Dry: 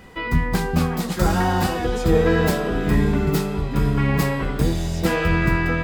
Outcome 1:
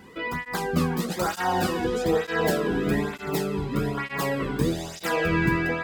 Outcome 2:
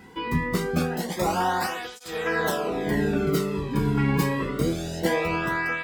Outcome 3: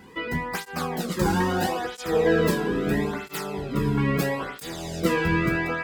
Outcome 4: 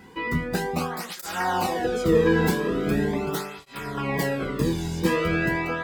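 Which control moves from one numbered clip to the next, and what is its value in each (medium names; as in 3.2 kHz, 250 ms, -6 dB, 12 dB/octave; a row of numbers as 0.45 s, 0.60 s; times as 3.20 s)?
cancelling through-zero flanger, nulls at: 1.1 Hz, 0.25 Hz, 0.76 Hz, 0.41 Hz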